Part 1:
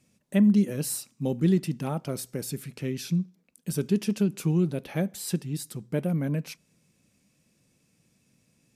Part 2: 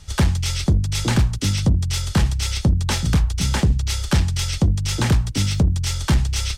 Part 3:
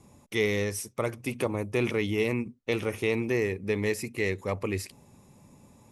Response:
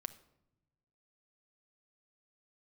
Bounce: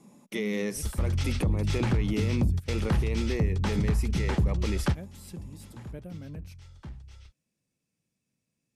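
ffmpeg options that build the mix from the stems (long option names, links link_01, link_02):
-filter_complex "[0:a]volume=-15dB[link_01];[1:a]lowpass=frequency=1500:poles=1,adelay=750,volume=-3dB[link_02];[2:a]lowshelf=frequency=130:width_type=q:width=3:gain=-12.5,volume=-1.5dB,asplit=2[link_03][link_04];[link_04]apad=whole_len=322964[link_05];[link_02][link_05]sidechaingate=range=-22dB:threshold=-44dB:ratio=16:detection=peak[link_06];[link_01][link_03]amix=inputs=2:normalize=0,alimiter=limit=-20.5dB:level=0:latency=1:release=31,volume=0dB[link_07];[link_06][link_07]amix=inputs=2:normalize=0,alimiter=limit=-18dB:level=0:latency=1:release=151"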